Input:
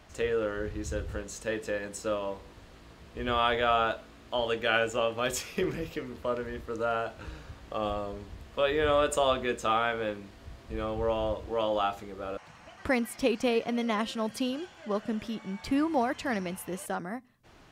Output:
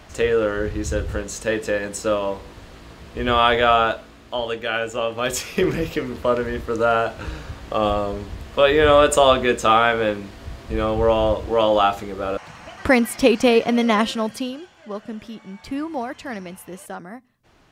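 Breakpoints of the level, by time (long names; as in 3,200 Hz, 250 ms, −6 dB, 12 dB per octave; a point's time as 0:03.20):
0:03.66 +10 dB
0:04.74 +2 dB
0:05.77 +11.5 dB
0:14.05 +11.5 dB
0:14.62 0 dB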